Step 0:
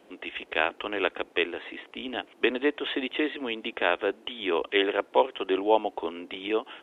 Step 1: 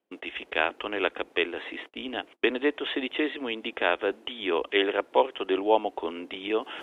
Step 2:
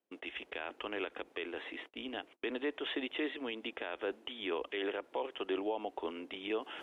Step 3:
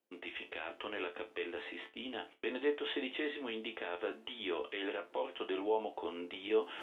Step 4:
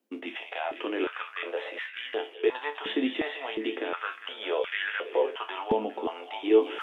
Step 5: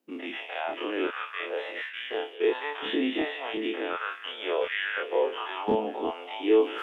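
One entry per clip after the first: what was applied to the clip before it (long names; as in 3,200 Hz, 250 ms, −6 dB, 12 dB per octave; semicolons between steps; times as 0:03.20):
noise gate −45 dBFS, range −32 dB; reversed playback; upward compression, threshold −32 dBFS; reversed playback
brickwall limiter −19.5 dBFS, peak gain reduction 12 dB; level −7 dB
reversed playback; upward compression, threshold −43 dBFS; reversed playback; resonators tuned to a chord D2 minor, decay 0.23 s; level +8.5 dB
echo through a band-pass that steps 203 ms, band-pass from 2,800 Hz, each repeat −0.7 octaves, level −7 dB; high-pass on a step sequencer 2.8 Hz 240–1,600 Hz; level +5 dB
every bin's largest magnitude spread in time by 60 ms; level −3 dB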